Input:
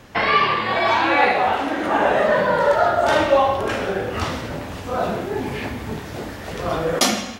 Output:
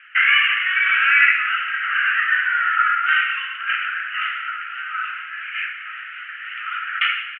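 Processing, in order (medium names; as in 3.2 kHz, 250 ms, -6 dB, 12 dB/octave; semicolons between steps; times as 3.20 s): Chebyshev band-pass 1.3–3 kHz, order 5; echo from a far wall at 290 m, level -7 dB; trim +8 dB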